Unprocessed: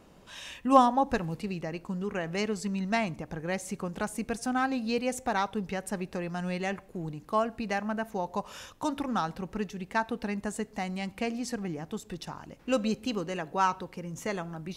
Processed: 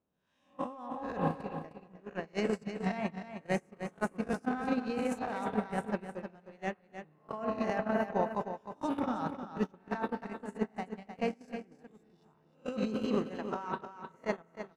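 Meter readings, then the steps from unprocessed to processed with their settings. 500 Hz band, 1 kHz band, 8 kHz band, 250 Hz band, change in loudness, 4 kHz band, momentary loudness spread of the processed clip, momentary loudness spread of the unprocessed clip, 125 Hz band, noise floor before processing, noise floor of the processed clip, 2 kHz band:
-3.0 dB, -7.5 dB, -14.0 dB, -4.0 dB, -4.5 dB, -10.0 dB, 12 LU, 10 LU, -5.0 dB, -56 dBFS, -67 dBFS, -6.0 dB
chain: spectral swells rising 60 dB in 0.63 s; HPF 66 Hz 12 dB/oct; spring tank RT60 3.6 s, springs 32/58 ms, chirp 40 ms, DRR 6 dB; in parallel at -8 dB: hard clip -17 dBFS, distortion -15 dB; on the sum: gate -23 dBFS, range -39 dB; negative-ratio compressor -33 dBFS, ratio -1; high shelf 2300 Hz -11.5 dB; echo 0.309 s -9.5 dB

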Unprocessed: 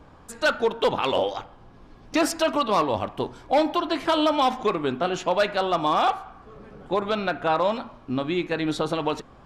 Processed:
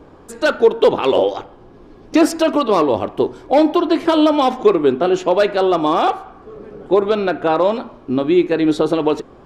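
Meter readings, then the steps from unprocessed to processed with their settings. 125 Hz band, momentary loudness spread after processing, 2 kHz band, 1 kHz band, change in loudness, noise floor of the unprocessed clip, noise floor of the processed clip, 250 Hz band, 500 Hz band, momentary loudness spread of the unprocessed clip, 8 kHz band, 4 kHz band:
+4.5 dB, 7 LU, +3.0 dB, +4.5 dB, +8.0 dB, -50 dBFS, -43 dBFS, +11.0 dB, +10.0 dB, 8 LU, n/a, +2.5 dB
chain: bell 380 Hz +11.5 dB 1.1 oct; gain +2.5 dB

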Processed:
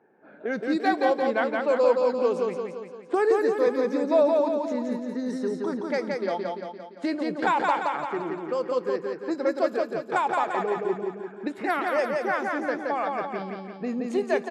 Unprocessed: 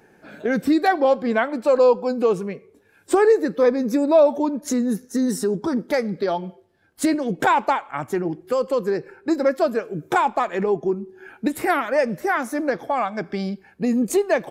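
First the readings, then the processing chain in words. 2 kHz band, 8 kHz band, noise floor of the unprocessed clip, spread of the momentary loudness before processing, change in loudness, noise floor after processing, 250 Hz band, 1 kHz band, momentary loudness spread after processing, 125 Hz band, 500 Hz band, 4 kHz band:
-3.5 dB, under -10 dB, -56 dBFS, 10 LU, -4.5 dB, -45 dBFS, -6.5 dB, -3.5 dB, 11 LU, -10.0 dB, -4.0 dB, -4.5 dB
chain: Bessel high-pass 290 Hz, order 2; low-pass opened by the level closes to 1200 Hz, open at -14.5 dBFS; on a send: feedback echo 0.172 s, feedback 54%, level -3 dB; on the sum: gain -5.5 dB

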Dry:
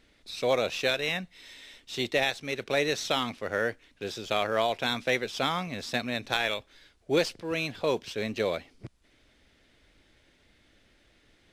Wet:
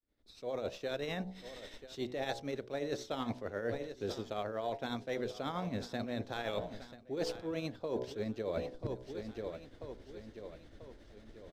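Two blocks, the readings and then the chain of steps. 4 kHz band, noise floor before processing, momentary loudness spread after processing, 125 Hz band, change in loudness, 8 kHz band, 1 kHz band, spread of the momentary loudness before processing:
-14.5 dB, -64 dBFS, 12 LU, -3.5 dB, -10.5 dB, -13.5 dB, -10.0 dB, 11 LU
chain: opening faded in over 2.74 s; de-hum 62.49 Hz, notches 16; vocal rider within 3 dB 2 s; tilt shelf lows +5.5 dB, about 820 Hz; tremolo triangle 11 Hz, depth 55%; fifteen-band EQ 160 Hz -4 dB, 2500 Hz -7 dB, 10000 Hz -5 dB; feedback echo 0.989 s, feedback 44%, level -19 dB; reverse; compressor 16:1, threshold -41 dBFS, peak gain reduction 20.5 dB; reverse; gain +7.5 dB

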